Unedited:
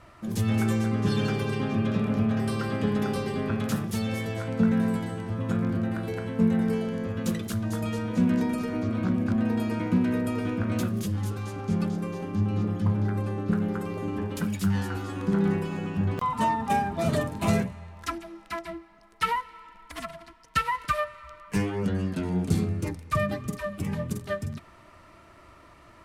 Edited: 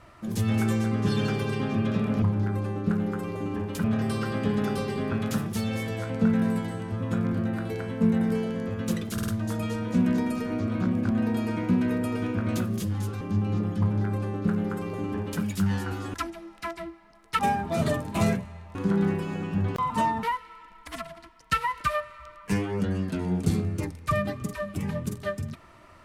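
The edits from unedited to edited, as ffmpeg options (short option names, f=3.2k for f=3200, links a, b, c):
-filter_complex "[0:a]asplit=11[a][b][c][d][e][f][g][h][i][j][k];[a]atrim=end=2.222[l];[b]atrim=start=12.838:end=14.462[m];[c]atrim=start=2.218:end=7.562[n];[d]atrim=start=7.508:end=7.562[o];[e]atrim=start=7.508:end=7.562[p];[f]atrim=start=7.508:end=11.442[q];[g]atrim=start=12.248:end=15.182[r];[h]atrim=start=18.018:end=19.272[s];[i]atrim=start=16.658:end=18.022[t];[j]atrim=start=15.178:end=16.662[u];[k]atrim=start=19.268[v];[l][m]acrossfade=d=0.004:c1=hsin:c2=hsin[w];[w][n]acrossfade=d=0.004:c1=hsin:c2=hsin[x];[x][o]acrossfade=d=0.004:c1=hsin:c2=hsin[y];[y][p]acrossfade=d=0.004:c1=hsin:c2=hsin[z];[z][q]acrossfade=d=0.004:c1=hsin:c2=hsin[aa];[aa][r]acrossfade=d=0.004:c1=hsin:c2=hsin[ab];[ab][s]acrossfade=d=0.004:c1=hsin:c2=hsin[ac];[ac][t]acrossfade=d=0.004:c1=hsin:c2=hsin[ad];[ad][u]acrossfade=d=0.004:c1=hsin:c2=hsin[ae];[ae][v]acrossfade=d=0.004:c1=hsin:c2=hsin"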